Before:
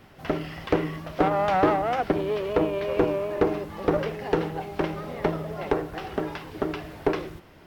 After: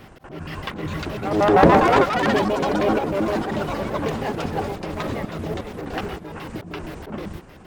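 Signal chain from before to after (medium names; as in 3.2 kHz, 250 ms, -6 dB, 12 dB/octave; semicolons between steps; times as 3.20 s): pitch shift switched off and on -11 st, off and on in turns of 78 ms; slow attack 267 ms; ever faster or slower copies 524 ms, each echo +5 st, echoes 3; trim +7.5 dB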